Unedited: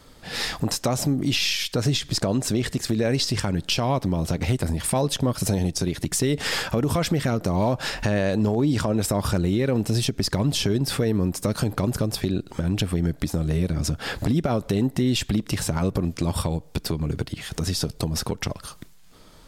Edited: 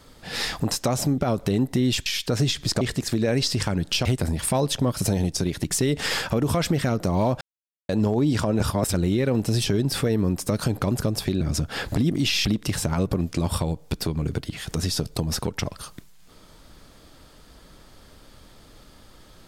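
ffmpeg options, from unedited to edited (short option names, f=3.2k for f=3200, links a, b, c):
-filter_complex "[0:a]asplit=13[a][b][c][d][e][f][g][h][i][j][k][l][m];[a]atrim=end=1.182[n];[b]atrim=start=14.408:end=15.292[o];[c]atrim=start=1.518:end=2.272[p];[d]atrim=start=2.578:end=3.822[q];[e]atrim=start=4.458:end=7.82,asetpts=PTS-STARTPTS,afade=t=out:st=3.358:d=0.004:c=hsin[r];[f]atrim=start=7.82:end=8.3,asetpts=PTS-STARTPTS,volume=0[s];[g]atrim=start=8.3:end=9.012,asetpts=PTS-STARTPTS,afade=t=in:d=0.004:c=hsin[t];[h]atrim=start=9.008:end=9.352,asetpts=PTS-STARTPTS,areverse[u];[i]atrim=start=9.348:end=10.072[v];[j]atrim=start=10.618:end=12.372[w];[k]atrim=start=13.708:end=14.412[x];[l]atrim=start=1.178:end=1.522[y];[m]atrim=start=15.288[z];[n][o]acrossfade=d=0.004:c1=hsin:c2=hsin[aa];[aa][p]acrossfade=d=0.004:c1=hsin:c2=hsin[ab];[ab][q]acrossfade=d=0.004:c1=hsin:c2=hsin[ac];[r][s][t]concat=n=3:v=0:a=1[ad];[ac][ad]acrossfade=d=0.004:c1=hsin:c2=hsin[ae];[ae][u]acrossfade=d=0.004:c1=hsin:c2=hsin[af];[af][v]acrossfade=d=0.004:c1=hsin:c2=hsin[ag];[ag][w]acrossfade=d=0.004:c1=hsin:c2=hsin[ah];[ah][x]acrossfade=d=0.004:c1=hsin:c2=hsin[ai];[ai][y]acrossfade=d=0.004:c1=hsin:c2=hsin[aj];[aj][z]acrossfade=d=0.004:c1=hsin:c2=hsin"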